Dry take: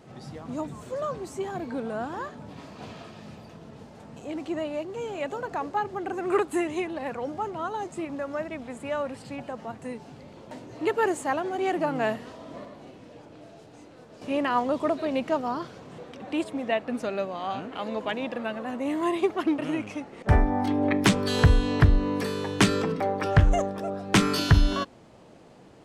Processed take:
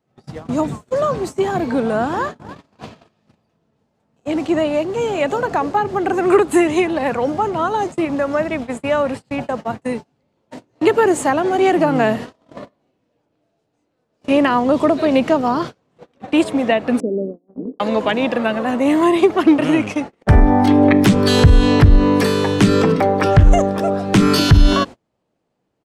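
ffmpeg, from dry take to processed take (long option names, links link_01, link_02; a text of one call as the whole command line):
ffmpeg -i in.wav -filter_complex "[0:a]asplit=2[link_01][link_02];[link_02]afade=type=in:start_time=2.09:duration=0.01,afade=type=out:start_time=2.54:duration=0.01,aecho=0:1:290|580|870|1160|1450:0.281838|0.140919|0.0704596|0.0352298|0.0176149[link_03];[link_01][link_03]amix=inputs=2:normalize=0,asettb=1/sr,asplit=3[link_04][link_05][link_06];[link_04]atrim=end=17.004[link_07];[link_05]atrim=start=17:end=17.8,asetpts=PTS-STARTPTS,afade=type=in:duration=0.004:curve=qsin,afade=type=out:start_time=0.796:duration=0.004:curve=qsin,asuperpass=centerf=290:order=8:qfactor=0.95[link_08];[link_06]atrim=start=17.796[link_09];[link_07][link_08]acrossfade=duration=0.004:curve1=hsin:curve2=qsin[link_10];[link_10][link_09]acrossfade=duration=0.004:curve1=qsin:curve2=hsin,agate=range=-34dB:threshold=-38dB:ratio=16:detection=peak,acrossover=split=410[link_11][link_12];[link_12]acompressor=threshold=-28dB:ratio=6[link_13];[link_11][link_13]amix=inputs=2:normalize=0,alimiter=level_in=14.5dB:limit=-1dB:release=50:level=0:latency=1,volume=-1dB" out.wav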